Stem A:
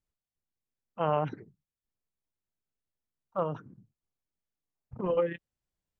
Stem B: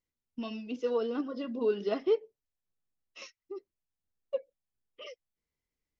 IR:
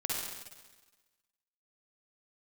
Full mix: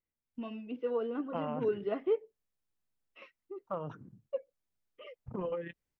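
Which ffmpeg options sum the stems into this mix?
-filter_complex "[0:a]acompressor=threshold=-33dB:ratio=6,adelay=350,volume=-0.5dB[a];[1:a]lowpass=f=2.6k:w=0.5412,lowpass=f=2.6k:w=1.3066,acontrast=29,volume=-8dB[b];[a][b]amix=inputs=2:normalize=0"

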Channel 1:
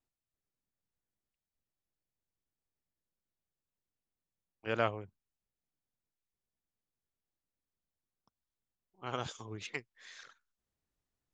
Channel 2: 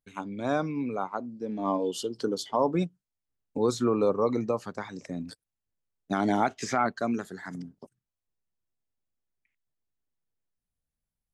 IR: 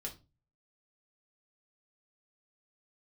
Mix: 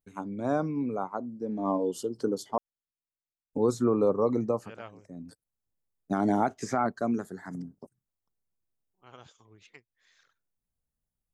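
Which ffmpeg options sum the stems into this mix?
-filter_complex "[0:a]volume=-13dB,asplit=2[a][b];[1:a]equalizer=f=3.1k:t=o:w=1.7:g=-14,volume=1dB,asplit=3[c][d][e];[c]atrim=end=2.58,asetpts=PTS-STARTPTS,afade=t=out:st=2.576:d=0.004:c=hsin[f];[d]atrim=start=2.58:end=3.53,asetpts=PTS-STARTPTS,volume=0[g];[e]atrim=start=3.53,asetpts=PTS-STARTPTS,afade=t=in:d=0.004:c=hsin[h];[f][g][h]concat=n=3:v=0:a=1[i];[b]apad=whole_len=499849[j];[i][j]sidechaincompress=threshold=-58dB:ratio=4:attack=22:release=433[k];[a][k]amix=inputs=2:normalize=0"

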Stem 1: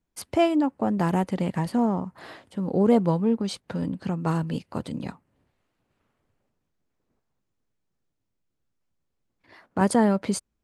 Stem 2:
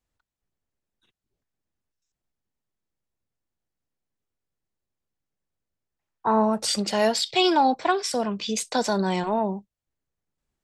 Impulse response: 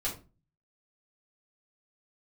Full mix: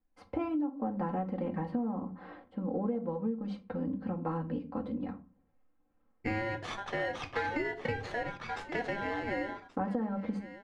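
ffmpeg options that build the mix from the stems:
-filter_complex "[0:a]aecho=1:1:3.8:0.88,volume=-9dB,asplit=2[a][b];[b]volume=-8dB[c];[1:a]highpass=250,lowshelf=f=320:g=-11,aeval=exprs='val(0)*sgn(sin(2*PI*1200*n/s))':c=same,volume=-4dB,asplit=3[d][e][f];[e]volume=-8.5dB[g];[f]volume=-15dB[h];[2:a]atrim=start_sample=2205[i];[c][g]amix=inputs=2:normalize=0[j];[j][i]afir=irnorm=-1:irlink=0[k];[h]aecho=0:1:1129:1[l];[a][d][k][l]amix=inputs=4:normalize=0,lowpass=1.5k,acompressor=threshold=-29dB:ratio=16"

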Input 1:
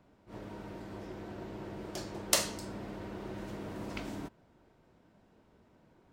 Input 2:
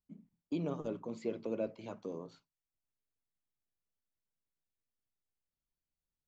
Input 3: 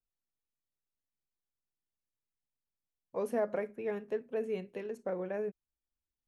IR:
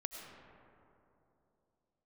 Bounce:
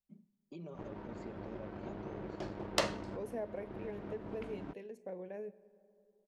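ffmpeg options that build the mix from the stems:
-filter_complex "[0:a]aeval=exprs='sgn(val(0))*max(abs(val(0))-0.00316,0)':c=same,adynamicsmooth=sensitivity=0.5:basefreq=2.4k,adelay=450,volume=2.5dB[a];[1:a]equalizer=f=570:w=0.51:g=3,aecho=1:1:5.2:0.76,alimiter=level_in=6dB:limit=-24dB:level=0:latency=1:release=267,volume=-6dB,volume=-10.5dB,asplit=2[b][c];[c]volume=-15dB[d];[2:a]equalizer=f=1.3k:w=3.5:g=-14,volume=-9dB,asplit=3[e][f][g];[f]volume=-13.5dB[h];[g]apad=whole_len=289983[i];[a][i]sidechaincompress=threshold=-48dB:ratio=3:attack=8.4:release=354[j];[3:a]atrim=start_sample=2205[k];[d][h]amix=inputs=2:normalize=0[l];[l][k]afir=irnorm=-1:irlink=0[m];[j][b][e][m]amix=inputs=4:normalize=0"

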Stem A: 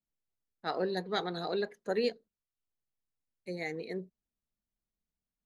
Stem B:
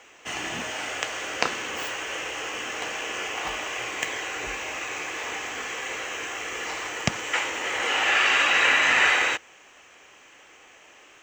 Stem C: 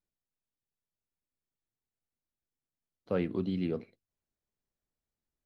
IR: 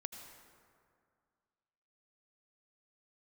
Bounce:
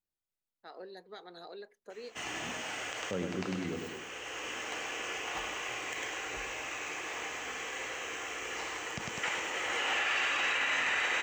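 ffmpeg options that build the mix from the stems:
-filter_complex "[0:a]highpass=330,alimiter=level_in=3.5dB:limit=-24dB:level=0:latency=1:release=198,volume=-3.5dB,volume=-9.5dB[a];[1:a]adelay=1900,volume=-7.5dB,asplit=2[b][c];[c]volume=-8.5dB[d];[2:a]volume=-5.5dB,asplit=3[e][f][g];[f]volume=-5dB[h];[g]apad=whole_len=578995[i];[b][i]sidechaincompress=threshold=-49dB:ratio=8:attack=6:release=596[j];[d][h]amix=inputs=2:normalize=0,aecho=0:1:101|202|303|404|505|606|707:1|0.49|0.24|0.118|0.0576|0.0282|0.0138[k];[a][j][e][k]amix=inputs=4:normalize=0,alimiter=limit=-22dB:level=0:latency=1:release=36"

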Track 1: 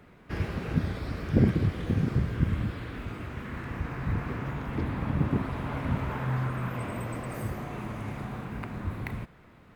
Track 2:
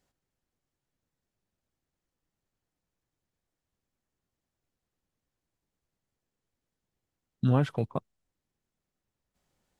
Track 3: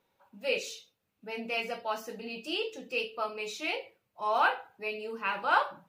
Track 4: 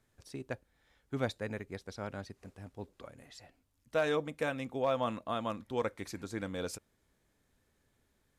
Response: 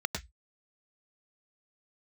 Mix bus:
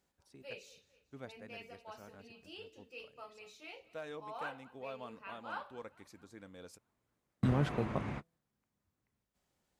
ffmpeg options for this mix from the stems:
-filter_complex "[0:a]lowpass=6.3k,volume=-3dB[a];[1:a]bandreject=f=166.2:t=h:w=4,bandreject=f=332.4:t=h:w=4,bandreject=f=498.6:t=h:w=4,bandreject=f=664.8:t=h:w=4,alimiter=limit=-17.5dB:level=0:latency=1:release=36,volume=-3dB,asplit=2[b][c];[2:a]volume=-17.5dB,asplit=2[d][e];[e]volume=-20dB[f];[3:a]volume=-14.5dB[g];[c]apad=whole_len=430068[h];[a][h]sidechaingate=range=-47dB:threshold=-58dB:ratio=16:detection=peak[i];[f]aecho=0:1:222|444|666|888|1110|1332|1554|1776:1|0.53|0.281|0.149|0.0789|0.0418|0.0222|0.0117[j];[i][b][d][g][j]amix=inputs=5:normalize=0,highpass=41,equalizer=f=110:w=3.7:g=-4"

